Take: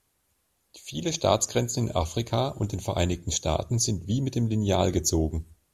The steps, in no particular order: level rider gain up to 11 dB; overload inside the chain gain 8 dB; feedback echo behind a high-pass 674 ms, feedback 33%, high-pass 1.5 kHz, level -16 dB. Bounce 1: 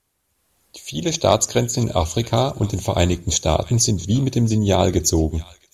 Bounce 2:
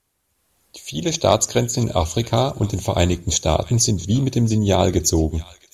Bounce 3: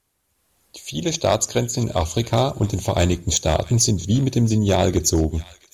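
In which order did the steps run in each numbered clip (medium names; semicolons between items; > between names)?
overload inside the chain > feedback echo behind a high-pass > level rider; overload inside the chain > level rider > feedback echo behind a high-pass; level rider > overload inside the chain > feedback echo behind a high-pass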